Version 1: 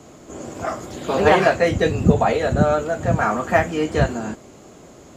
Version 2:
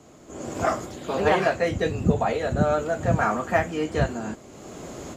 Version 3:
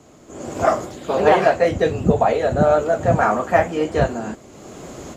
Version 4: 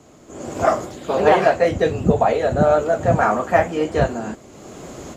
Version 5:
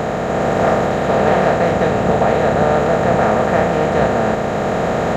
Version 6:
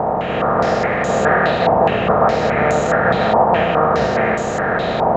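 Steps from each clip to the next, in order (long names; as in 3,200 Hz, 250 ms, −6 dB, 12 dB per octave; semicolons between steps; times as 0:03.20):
automatic gain control gain up to 16 dB; level −7 dB
flanger 1.8 Hz, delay 0.1 ms, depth 9.8 ms, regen −70%; dynamic equaliser 620 Hz, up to +6 dB, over −39 dBFS, Q 0.88; level +6.5 dB
no processing that can be heard
compressor on every frequency bin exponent 0.2; level −6.5 dB
feedback echo with a high-pass in the loop 80 ms, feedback 85%, high-pass 220 Hz, level −9 dB; low-pass on a step sequencer 4.8 Hz 910–6,900 Hz; level −3.5 dB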